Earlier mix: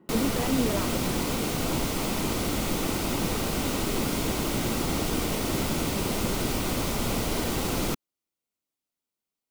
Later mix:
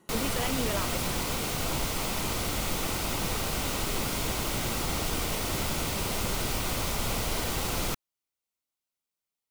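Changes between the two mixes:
speech: remove air absorption 430 m; master: add bell 270 Hz -8.5 dB 1.7 oct

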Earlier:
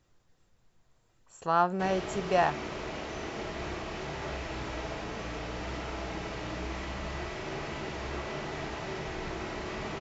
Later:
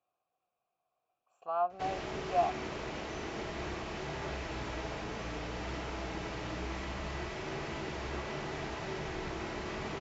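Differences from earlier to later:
speech: add vowel filter a; background: send -8.0 dB

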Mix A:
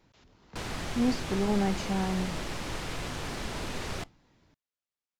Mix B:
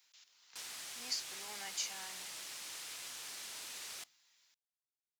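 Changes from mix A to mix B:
speech: add tilt shelf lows -9.5 dB, about 670 Hz; master: add differentiator

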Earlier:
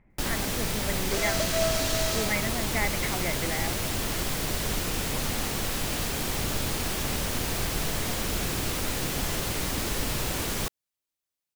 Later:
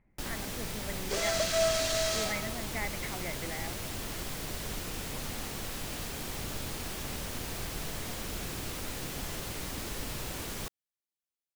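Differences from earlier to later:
speech -7.5 dB; first sound -8.5 dB

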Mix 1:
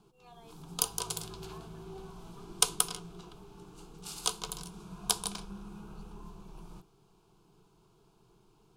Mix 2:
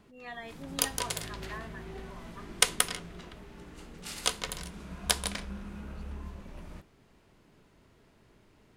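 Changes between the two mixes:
speech +7.5 dB; master: remove fixed phaser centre 380 Hz, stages 8

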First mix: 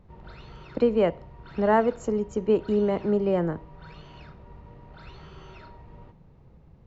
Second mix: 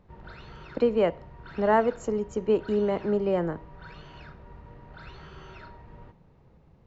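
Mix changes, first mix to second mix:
speech: add low shelf 220 Hz -6 dB; background: add bell 1600 Hz +6 dB 0.45 oct

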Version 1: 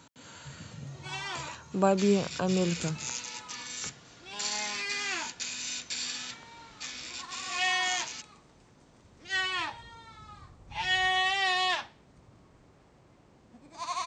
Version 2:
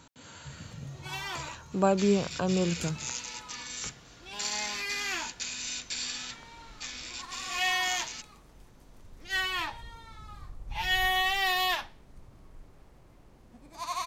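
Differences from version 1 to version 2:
first sound: remove steep low-pass 8600 Hz 72 dB/oct; master: remove HPF 92 Hz 12 dB/oct

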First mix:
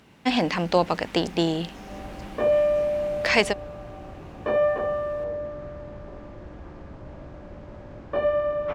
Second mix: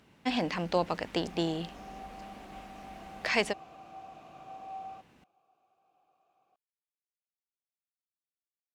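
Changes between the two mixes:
speech -7.5 dB; second sound: muted

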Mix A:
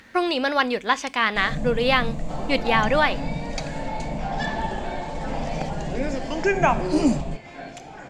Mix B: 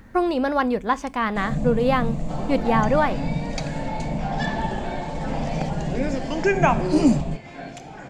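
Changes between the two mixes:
speech: remove weighting filter D; master: add bell 150 Hz +5 dB 1.9 oct

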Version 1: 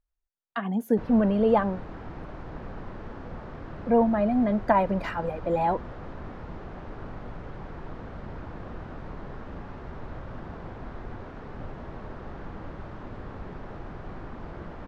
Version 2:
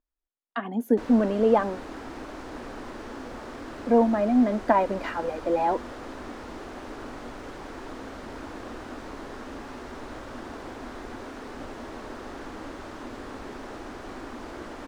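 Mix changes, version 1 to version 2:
background: remove tape spacing loss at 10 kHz 29 dB; master: add resonant low shelf 210 Hz -6.5 dB, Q 3

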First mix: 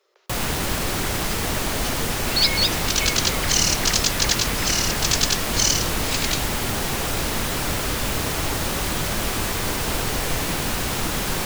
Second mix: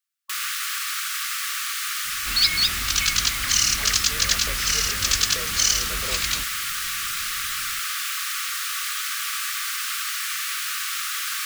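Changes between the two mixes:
speech: entry +2.75 s; first sound: add brick-wall FIR high-pass 1100 Hz

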